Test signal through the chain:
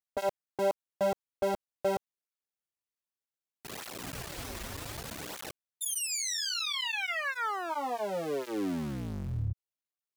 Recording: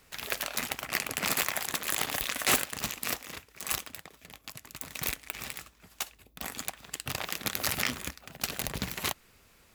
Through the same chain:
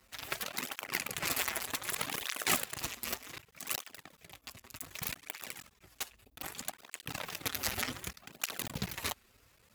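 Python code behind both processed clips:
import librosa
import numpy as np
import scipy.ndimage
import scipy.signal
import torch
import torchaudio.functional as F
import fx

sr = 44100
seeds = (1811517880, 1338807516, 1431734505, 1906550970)

y = fx.cycle_switch(x, sr, every=3, mode='muted')
y = fx.flanger_cancel(y, sr, hz=0.65, depth_ms=7.1)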